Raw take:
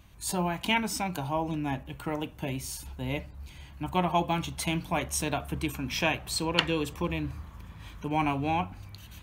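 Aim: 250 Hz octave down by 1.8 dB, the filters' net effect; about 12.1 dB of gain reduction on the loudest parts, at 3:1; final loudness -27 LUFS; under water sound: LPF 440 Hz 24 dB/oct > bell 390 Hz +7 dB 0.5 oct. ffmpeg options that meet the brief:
-af "equalizer=f=250:t=o:g=-5.5,acompressor=threshold=-36dB:ratio=3,lowpass=f=440:w=0.5412,lowpass=f=440:w=1.3066,equalizer=f=390:t=o:w=0.5:g=7,volume=16dB"

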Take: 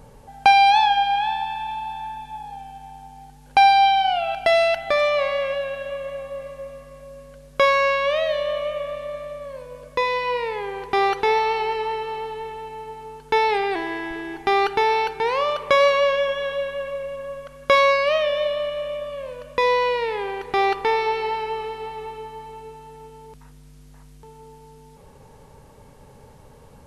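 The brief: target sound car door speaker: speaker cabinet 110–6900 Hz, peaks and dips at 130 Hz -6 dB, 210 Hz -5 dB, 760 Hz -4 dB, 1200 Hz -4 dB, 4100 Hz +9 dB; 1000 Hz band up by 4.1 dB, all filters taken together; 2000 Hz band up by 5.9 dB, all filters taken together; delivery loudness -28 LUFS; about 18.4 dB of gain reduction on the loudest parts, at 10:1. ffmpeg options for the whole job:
-af "equalizer=f=1k:t=o:g=8.5,equalizer=f=2k:t=o:g=5,acompressor=threshold=-23dB:ratio=10,highpass=110,equalizer=f=130:t=q:w=4:g=-6,equalizer=f=210:t=q:w=4:g=-5,equalizer=f=760:t=q:w=4:g=-4,equalizer=f=1.2k:t=q:w=4:g=-4,equalizer=f=4.1k:t=q:w=4:g=9,lowpass=f=6.9k:w=0.5412,lowpass=f=6.9k:w=1.3066,volume=1dB"

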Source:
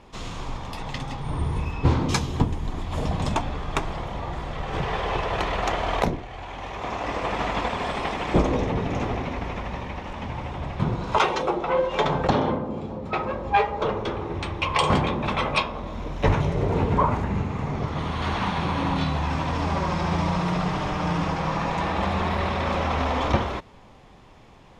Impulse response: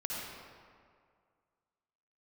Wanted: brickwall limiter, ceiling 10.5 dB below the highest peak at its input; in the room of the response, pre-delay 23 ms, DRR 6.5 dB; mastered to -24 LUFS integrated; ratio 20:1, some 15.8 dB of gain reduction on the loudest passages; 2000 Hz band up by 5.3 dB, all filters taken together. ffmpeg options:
-filter_complex "[0:a]equalizer=f=2k:t=o:g=6.5,acompressor=threshold=-30dB:ratio=20,alimiter=level_in=2.5dB:limit=-24dB:level=0:latency=1,volume=-2.5dB,asplit=2[a][b];[1:a]atrim=start_sample=2205,adelay=23[c];[b][c]afir=irnorm=-1:irlink=0,volume=-10dB[d];[a][d]amix=inputs=2:normalize=0,volume=11.5dB"

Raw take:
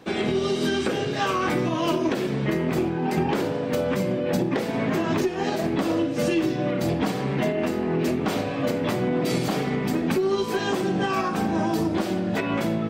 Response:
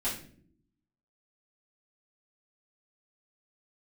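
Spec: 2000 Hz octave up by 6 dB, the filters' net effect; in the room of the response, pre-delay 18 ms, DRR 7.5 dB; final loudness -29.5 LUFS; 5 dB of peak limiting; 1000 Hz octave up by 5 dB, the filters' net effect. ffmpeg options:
-filter_complex "[0:a]equalizer=f=1k:t=o:g=5,equalizer=f=2k:t=o:g=6,alimiter=limit=-14.5dB:level=0:latency=1,asplit=2[a][b];[1:a]atrim=start_sample=2205,adelay=18[c];[b][c]afir=irnorm=-1:irlink=0,volume=-13.5dB[d];[a][d]amix=inputs=2:normalize=0,volume=-6.5dB"

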